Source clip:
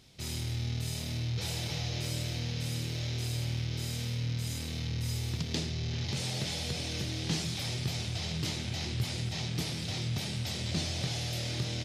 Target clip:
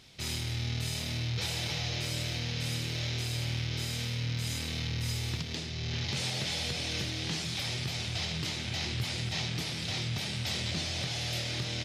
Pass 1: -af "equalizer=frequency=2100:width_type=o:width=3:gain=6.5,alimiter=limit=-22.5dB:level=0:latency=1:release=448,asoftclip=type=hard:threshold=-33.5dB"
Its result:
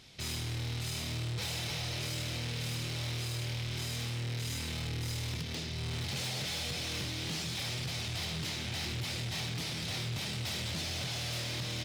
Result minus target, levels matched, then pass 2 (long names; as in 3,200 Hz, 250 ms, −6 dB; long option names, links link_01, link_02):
hard clipping: distortion +33 dB
-af "equalizer=frequency=2100:width_type=o:width=3:gain=6.5,alimiter=limit=-22.5dB:level=0:latency=1:release=448,asoftclip=type=hard:threshold=-23.5dB"